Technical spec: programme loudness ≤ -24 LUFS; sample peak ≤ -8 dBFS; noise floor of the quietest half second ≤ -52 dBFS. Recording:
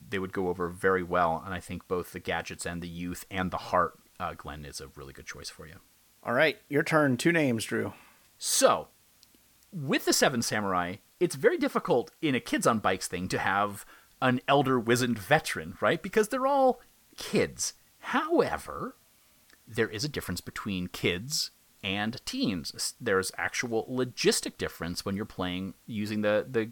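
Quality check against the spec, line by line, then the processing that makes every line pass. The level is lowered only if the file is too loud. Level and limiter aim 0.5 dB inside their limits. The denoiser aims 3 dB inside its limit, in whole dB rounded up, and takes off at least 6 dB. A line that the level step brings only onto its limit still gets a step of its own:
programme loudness -29.0 LUFS: pass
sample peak -8.5 dBFS: pass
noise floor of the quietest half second -62 dBFS: pass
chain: none needed

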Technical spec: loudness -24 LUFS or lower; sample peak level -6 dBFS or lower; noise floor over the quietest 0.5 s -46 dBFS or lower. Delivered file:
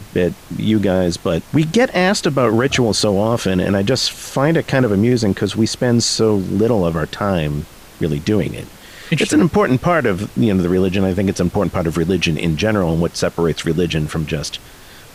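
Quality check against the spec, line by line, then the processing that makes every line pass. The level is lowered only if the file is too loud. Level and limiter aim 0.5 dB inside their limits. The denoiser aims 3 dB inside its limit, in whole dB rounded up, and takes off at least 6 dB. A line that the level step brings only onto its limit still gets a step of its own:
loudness -17.0 LUFS: fail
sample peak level -4.5 dBFS: fail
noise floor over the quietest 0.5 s -40 dBFS: fail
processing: trim -7.5 dB

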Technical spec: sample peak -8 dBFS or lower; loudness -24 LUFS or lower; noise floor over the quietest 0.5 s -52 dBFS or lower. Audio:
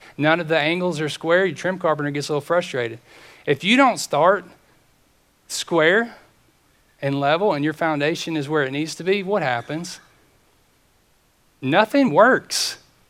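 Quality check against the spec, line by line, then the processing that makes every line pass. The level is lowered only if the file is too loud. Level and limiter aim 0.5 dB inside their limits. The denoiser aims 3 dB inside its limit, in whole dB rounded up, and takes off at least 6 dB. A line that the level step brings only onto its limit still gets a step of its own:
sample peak -2.0 dBFS: fail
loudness -20.0 LUFS: fail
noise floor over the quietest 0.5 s -60 dBFS: pass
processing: trim -4.5 dB; peak limiter -8.5 dBFS

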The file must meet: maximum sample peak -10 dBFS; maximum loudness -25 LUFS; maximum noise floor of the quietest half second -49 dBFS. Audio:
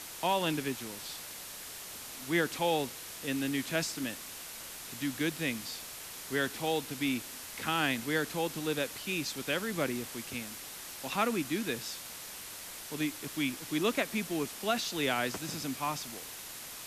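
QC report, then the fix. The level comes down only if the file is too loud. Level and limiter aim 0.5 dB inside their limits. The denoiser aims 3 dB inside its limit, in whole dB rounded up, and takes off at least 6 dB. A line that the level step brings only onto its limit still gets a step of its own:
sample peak -17.5 dBFS: pass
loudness -34.0 LUFS: pass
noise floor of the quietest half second -45 dBFS: fail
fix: noise reduction 7 dB, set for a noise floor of -45 dBFS

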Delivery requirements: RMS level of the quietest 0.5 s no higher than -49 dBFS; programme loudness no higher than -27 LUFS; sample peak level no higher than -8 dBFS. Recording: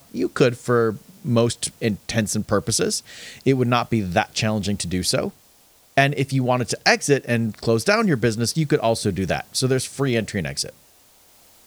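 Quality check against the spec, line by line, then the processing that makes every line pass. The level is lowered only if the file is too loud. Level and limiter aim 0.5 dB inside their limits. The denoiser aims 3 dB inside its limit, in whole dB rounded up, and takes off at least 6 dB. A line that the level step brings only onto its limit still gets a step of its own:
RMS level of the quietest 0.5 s -55 dBFS: pass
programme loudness -21.5 LUFS: fail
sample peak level -2.5 dBFS: fail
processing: trim -6 dB

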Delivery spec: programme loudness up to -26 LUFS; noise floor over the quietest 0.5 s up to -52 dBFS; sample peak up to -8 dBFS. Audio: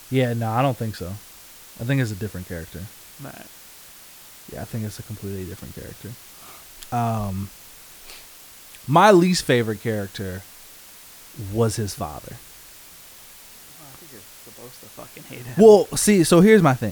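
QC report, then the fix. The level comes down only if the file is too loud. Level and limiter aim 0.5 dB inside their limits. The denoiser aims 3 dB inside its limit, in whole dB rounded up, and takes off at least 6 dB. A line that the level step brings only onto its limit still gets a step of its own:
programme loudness -19.5 LUFS: fail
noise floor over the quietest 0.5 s -45 dBFS: fail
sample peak -2.5 dBFS: fail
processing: noise reduction 6 dB, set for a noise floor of -45 dBFS; trim -7 dB

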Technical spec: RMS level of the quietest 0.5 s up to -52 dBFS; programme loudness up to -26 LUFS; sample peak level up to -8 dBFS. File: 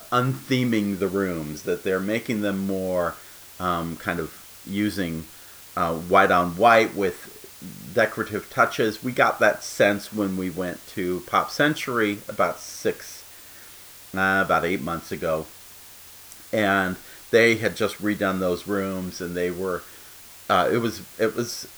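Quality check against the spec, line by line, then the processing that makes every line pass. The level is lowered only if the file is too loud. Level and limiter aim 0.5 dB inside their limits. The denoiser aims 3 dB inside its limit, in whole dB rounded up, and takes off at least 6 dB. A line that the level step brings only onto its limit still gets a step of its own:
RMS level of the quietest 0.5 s -45 dBFS: fail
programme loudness -23.5 LUFS: fail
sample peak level -4.5 dBFS: fail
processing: noise reduction 7 dB, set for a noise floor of -45 dBFS; trim -3 dB; peak limiter -8.5 dBFS

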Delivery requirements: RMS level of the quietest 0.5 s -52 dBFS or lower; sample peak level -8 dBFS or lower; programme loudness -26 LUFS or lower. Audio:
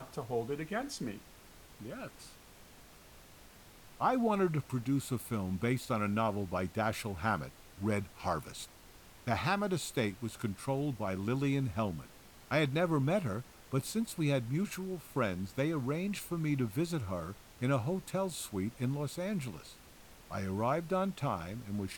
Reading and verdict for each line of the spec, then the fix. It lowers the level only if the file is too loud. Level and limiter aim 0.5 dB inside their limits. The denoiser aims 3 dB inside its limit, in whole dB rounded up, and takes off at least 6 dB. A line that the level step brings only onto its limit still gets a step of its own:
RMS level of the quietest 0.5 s -56 dBFS: pass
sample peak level -17.0 dBFS: pass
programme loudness -35.0 LUFS: pass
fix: none needed

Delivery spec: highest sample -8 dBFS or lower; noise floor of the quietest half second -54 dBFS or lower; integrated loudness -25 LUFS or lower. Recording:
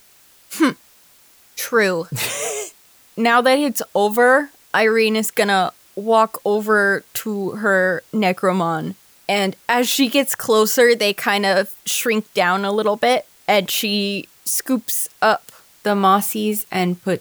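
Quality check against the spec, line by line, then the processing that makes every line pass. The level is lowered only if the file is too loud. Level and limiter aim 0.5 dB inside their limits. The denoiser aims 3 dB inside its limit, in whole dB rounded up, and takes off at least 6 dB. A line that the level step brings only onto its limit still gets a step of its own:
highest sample -3.0 dBFS: fail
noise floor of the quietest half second -51 dBFS: fail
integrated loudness -18.0 LUFS: fail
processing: trim -7.5 dB

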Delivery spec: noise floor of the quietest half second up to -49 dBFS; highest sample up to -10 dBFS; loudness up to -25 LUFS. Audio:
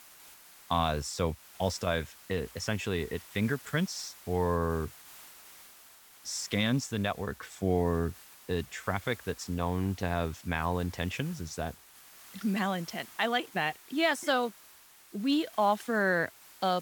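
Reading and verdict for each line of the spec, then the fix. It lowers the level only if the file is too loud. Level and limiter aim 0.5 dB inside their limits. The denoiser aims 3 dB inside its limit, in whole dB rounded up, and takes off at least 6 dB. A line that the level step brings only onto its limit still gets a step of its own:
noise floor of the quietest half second -56 dBFS: pass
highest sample -14.0 dBFS: pass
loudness -32.0 LUFS: pass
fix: none needed

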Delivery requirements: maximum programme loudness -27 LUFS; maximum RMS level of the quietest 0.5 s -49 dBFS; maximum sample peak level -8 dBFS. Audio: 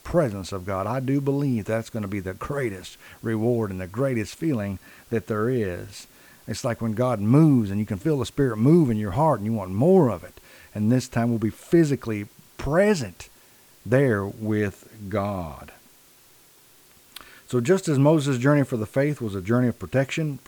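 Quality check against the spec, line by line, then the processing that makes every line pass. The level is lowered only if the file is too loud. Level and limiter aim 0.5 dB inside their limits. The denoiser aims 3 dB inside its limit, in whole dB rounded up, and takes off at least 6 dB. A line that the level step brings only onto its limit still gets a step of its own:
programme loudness -23.5 LUFS: fail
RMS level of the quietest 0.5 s -54 dBFS: pass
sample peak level -5.5 dBFS: fail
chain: trim -4 dB

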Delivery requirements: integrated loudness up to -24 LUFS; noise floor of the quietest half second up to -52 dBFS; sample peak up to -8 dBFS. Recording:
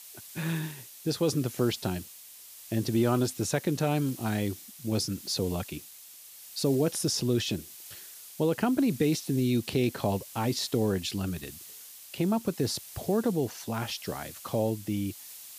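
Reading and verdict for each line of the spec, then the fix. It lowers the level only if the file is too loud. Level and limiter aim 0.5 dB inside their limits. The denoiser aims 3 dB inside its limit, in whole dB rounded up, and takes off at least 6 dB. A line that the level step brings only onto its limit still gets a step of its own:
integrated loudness -30.0 LUFS: pass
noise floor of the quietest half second -49 dBFS: fail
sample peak -13.5 dBFS: pass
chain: noise reduction 6 dB, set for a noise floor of -49 dBFS

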